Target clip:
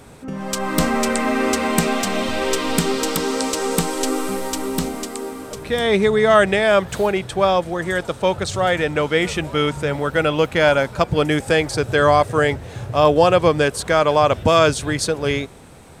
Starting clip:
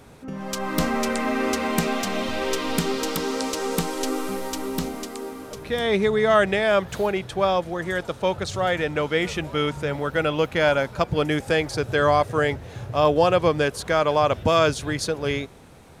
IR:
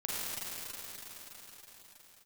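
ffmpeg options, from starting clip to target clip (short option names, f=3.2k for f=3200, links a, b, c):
-af "equalizer=f=8.2k:w=5.3:g=7.5,volume=4.5dB"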